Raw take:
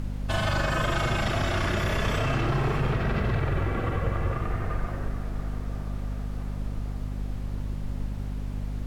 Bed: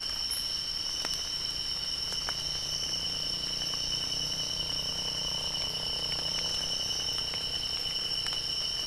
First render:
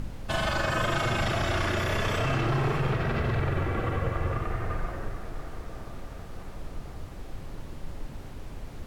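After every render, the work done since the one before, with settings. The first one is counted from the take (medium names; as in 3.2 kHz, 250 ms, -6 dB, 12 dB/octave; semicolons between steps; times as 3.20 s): de-hum 50 Hz, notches 5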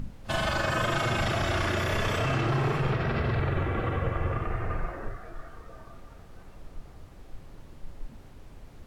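noise print and reduce 8 dB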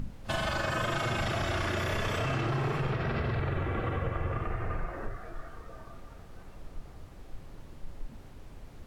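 compression 2:1, threshold -30 dBFS, peak gain reduction 4.5 dB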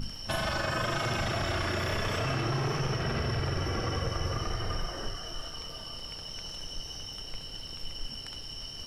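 add bed -10 dB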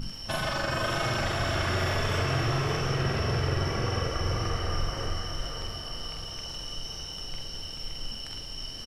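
doubling 46 ms -5 dB; echo that smears into a reverb 570 ms, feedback 45%, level -6 dB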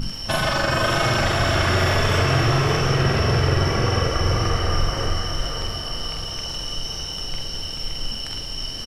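trim +8.5 dB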